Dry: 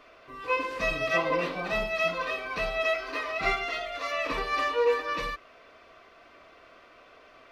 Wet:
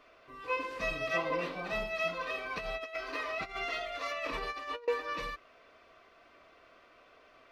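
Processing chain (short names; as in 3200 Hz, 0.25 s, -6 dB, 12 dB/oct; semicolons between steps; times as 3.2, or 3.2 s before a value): 2.3–4.88 negative-ratio compressor -31 dBFS, ratio -0.5; gain -6 dB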